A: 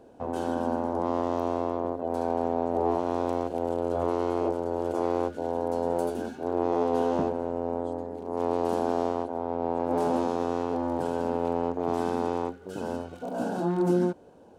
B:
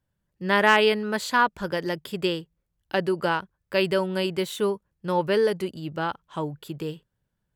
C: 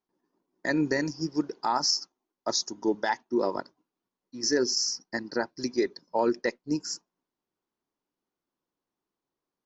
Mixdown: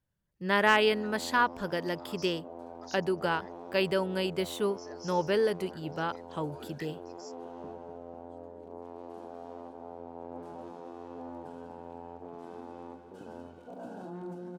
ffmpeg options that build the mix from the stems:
ffmpeg -i stem1.wav -i stem2.wav -i stem3.wav -filter_complex "[0:a]bass=frequency=250:gain=0,treble=frequency=4000:gain=-5,adelay=450,volume=-11dB,asplit=2[link_01][link_02];[link_02]volume=-15dB[link_03];[1:a]volume=-5dB,asplit=2[link_04][link_05];[2:a]highpass=1200,adelay=350,volume=-8dB[link_06];[link_05]apad=whole_len=441033[link_07];[link_06][link_07]sidechaincompress=threshold=-36dB:ratio=8:attack=16:release=660[link_08];[link_01][link_08]amix=inputs=2:normalize=0,alimiter=level_in=10dB:limit=-24dB:level=0:latency=1:release=150,volume=-10dB,volume=0dB[link_09];[link_03]aecho=0:1:247|494|741|988|1235|1482|1729|1976|2223|2470:1|0.6|0.36|0.216|0.13|0.0778|0.0467|0.028|0.0168|0.0101[link_10];[link_04][link_09][link_10]amix=inputs=3:normalize=0" out.wav

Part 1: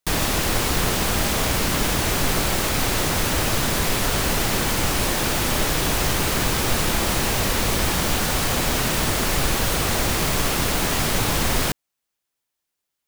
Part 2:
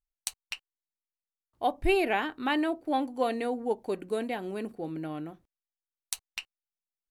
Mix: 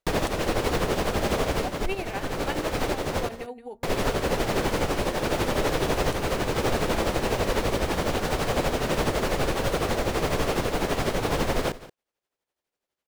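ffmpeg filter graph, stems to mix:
ffmpeg -i stem1.wav -i stem2.wav -filter_complex "[0:a]lowpass=frequency=3200:poles=1,equalizer=frequency=490:width=1.1:gain=8.5,volume=1dB,asplit=3[link_01][link_02][link_03];[link_01]atrim=end=3.29,asetpts=PTS-STARTPTS,afade=type=out:start_time=3.286:duration=0.004:curve=hsin[link_04];[link_02]atrim=start=3.29:end=3.83,asetpts=PTS-STARTPTS,volume=0[link_05];[link_03]atrim=start=3.83,asetpts=PTS-STARTPTS,afade=type=in:duration=0.004:curve=hsin[link_06];[link_04][link_05][link_06]concat=n=3:v=0:a=1,asplit=2[link_07][link_08];[link_08]volume=-19.5dB[link_09];[1:a]asubboost=boost=5.5:cutoff=97,volume=-4dB,asplit=3[link_10][link_11][link_12];[link_11]volume=-13.5dB[link_13];[link_12]apad=whole_len=576758[link_14];[link_07][link_14]sidechaincompress=threshold=-34dB:ratio=8:attack=21:release=785[link_15];[link_09][link_13]amix=inputs=2:normalize=0,aecho=0:1:176:1[link_16];[link_15][link_10][link_16]amix=inputs=3:normalize=0,tremolo=f=12:d=0.6,alimiter=limit=-13.5dB:level=0:latency=1:release=428" out.wav

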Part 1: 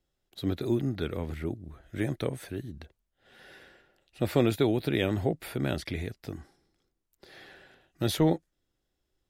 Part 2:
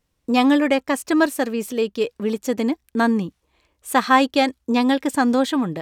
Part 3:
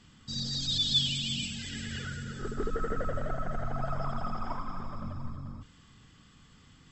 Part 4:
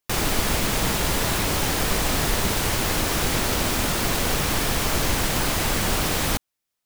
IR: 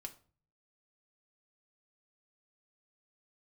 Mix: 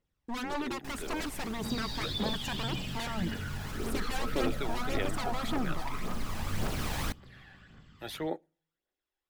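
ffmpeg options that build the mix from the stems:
-filter_complex "[0:a]acrossover=split=320 2700:gain=0.141 1 0.141[link_01][link_02][link_03];[link_01][link_02][link_03]amix=inputs=3:normalize=0,crystalizer=i=6.5:c=0,volume=-10.5dB,asplit=2[link_04][link_05];[link_05]volume=-9.5dB[link_06];[1:a]dynaudnorm=framelen=220:gausssize=7:maxgain=11.5dB,aeval=exprs='0.119*(abs(mod(val(0)/0.119+3,4)-2)-1)':channel_layout=same,volume=-13dB,asplit=2[link_07][link_08];[2:a]equalizer=frequency=7200:width_type=o:width=0.77:gain=-6.5,acompressor=threshold=-32dB:ratio=6,flanger=delay=15.5:depth=4.1:speed=0.67,adelay=1350,volume=1.5dB[link_09];[3:a]alimiter=limit=-19dB:level=0:latency=1:release=130,adelay=750,volume=-6.5dB,asplit=2[link_10][link_11];[link_11]volume=-10.5dB[link_12];[link_08]apad=whole_len=335392[link_13];[link_10][link_13]sidechaincompress=threshold=-52dB:ratio=8:attack=16:release=943[link_14];[4:a]atrim=start_sample=2205[link_15];[link_06][link_12]amix=inputs=2:normalize=0[link_16];[link_16][link_15]afir=irnorm=-1:irlink=0[link_17];[link_04][link_07][link_09][link_14][link_17]amix=inputs=5:normalize=0,highshelf=frequency=5200:gain=-7,aphaser=in_gain=1:out_gain=1:delay=1.3:decay=0.44:speed=1.8:type=triangular"

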